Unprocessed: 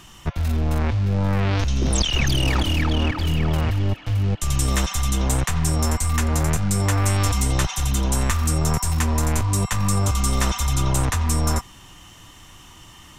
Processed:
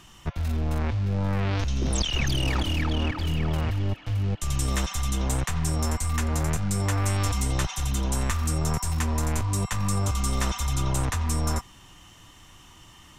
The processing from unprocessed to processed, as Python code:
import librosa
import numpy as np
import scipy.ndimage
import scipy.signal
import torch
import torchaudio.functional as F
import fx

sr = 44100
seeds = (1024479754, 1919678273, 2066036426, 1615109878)

y = fx.high_shelf(x, sr, hz=11000.0, db=-3.5)
y = y * librosa.db_to_amplitude(-5.0)